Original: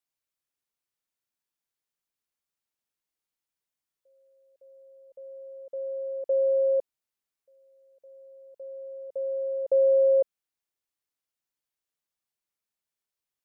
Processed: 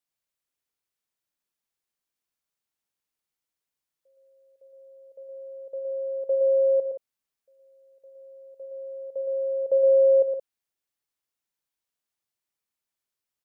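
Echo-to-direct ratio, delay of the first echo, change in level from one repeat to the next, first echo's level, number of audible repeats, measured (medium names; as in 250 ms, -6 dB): -5.0 dB, 55 ms, no regular repeats, -16.0 dB, 3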